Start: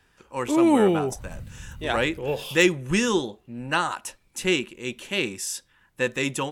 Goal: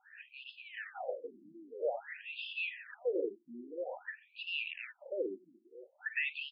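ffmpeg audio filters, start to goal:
-filter_complex "[0:a]areverse,acompressor=threshold=-28dB:ratio=12,areverse,asplit=2[a][b];[b]highpass=f=720:p=1,volume=20dB,asoftclip=type=tanh:threshold=-19.5dB[c];[a][c]amix=inputs=2:normalize=0,lowpass=f=2.9k:p=1,volume=-6dB,asplit=3[d][e][f];[d]bandpass=f=530:t=q:w=8,volume=0dB[g];[e]bandpass=f=1.84k:t=q:w=8,volume=-6dB[h];[f]bandpass=f=2.48k:t=q:w=8,volume=-9dB[i];[g][h][i]amix=inputs=3:normalize=0,aecho=1:1:936:0.168,afftfilt=real='re*between(b*sr/1024,240*pow(3700/240,0.5+0.5*sin(2*PI*0.5*pts/sr))/1.41,240*pow(3700/240,0.5+0.5*sin(2*PI*0.5*pts/sr))*1.41)':imag='im*between(b*sr/1024,240*pow(3700/240,0.5+0.5*sin(2*PI*0.5*pts/sr))/1.41,240*pow(3700/240,0.5+0.5*sin(2*PI*0.5*pts/sr))*1.41)':win_size=1024:overlap=0.75,volume=8dB"

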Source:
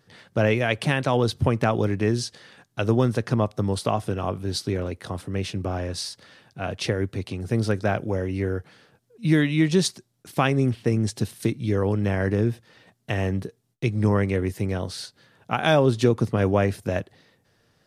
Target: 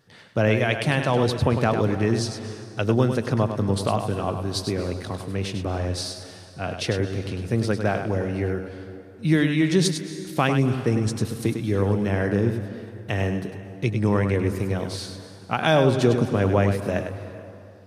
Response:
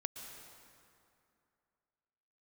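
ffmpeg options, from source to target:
-filter_complex "[0:a]asplit=2[a][b];[1:a]atrim=start_sample=2205,adelay=101[c];[b][c]afir=irnorm=-1:irlink=0,volume=-5dB[d];[a][d]amix=inputs=2:normalize=0"

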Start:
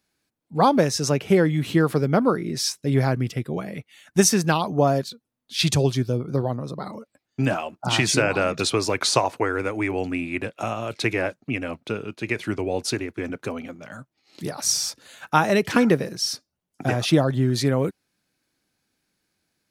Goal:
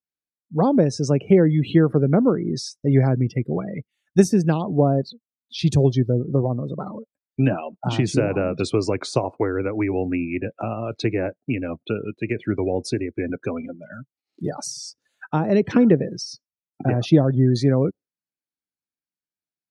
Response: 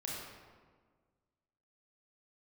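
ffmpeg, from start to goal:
-filter_complex "[0:a]afftdn=nr=30:nf=-33,acrossover=split=570[a][b];[b]acompressor=threshold=-36dB:ratio=5[c];[a][c]amix=inputs=2:normalize=0,volume=4dB"

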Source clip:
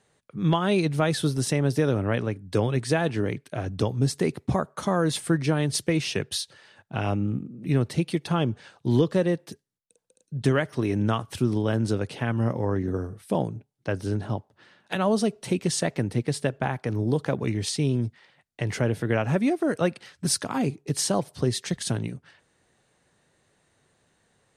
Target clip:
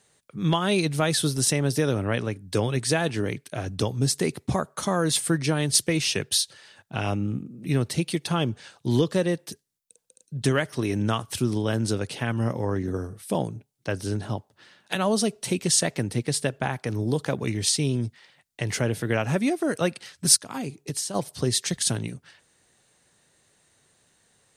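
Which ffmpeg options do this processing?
-filter_complex "[0:a]highshelf=f=3.3k:g=11,asplit=3[a][b][c];[a]afade=t=out:st=20.35:d=0.02[d];[b]acompressor=threshold=-26dB:ratio=12,afade=t=in:st=20.35:d=0.02,afade=t=out:st=21.14:d=0.02[e];[c]afade=t=in:st=21.14:d=0.02[f];[d][e][f]amix=inputs=3:normalize=0,volume=-1dB"

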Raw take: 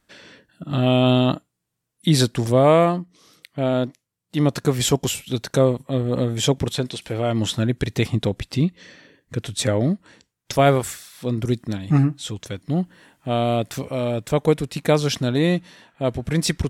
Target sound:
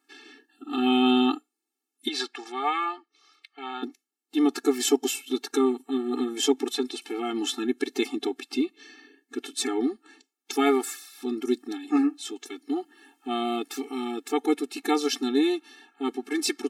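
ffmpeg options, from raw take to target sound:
-filter_complex "[0:a]asettb=1/sr,asplit=3[a][b][c];[a]atrim=end=2.084[d];[b]atrim=start=2.08:end=3.83,asetpts=PTS-STARTPTS,afade=t=in:d=0.004:c=qsin,afade=t=out:st=1.746:d=0.004:c=qsin,highpass=770,lowpass=4.5k[e];[c]atrim=start=3.826[f];[d][e]acrossfade=d=0.004:c1=hsin:c2=qsin[g];[g][f]acrossfade=d=0.004:c1=qsin:c2=hsin,afftfilt=real='re*eq(mod(floor(b*sr/1024/230),2),1)':imag='im*eq(mod(floor(b*sr/1024/230),2),1)':win_size=1024:overlap=0.75"

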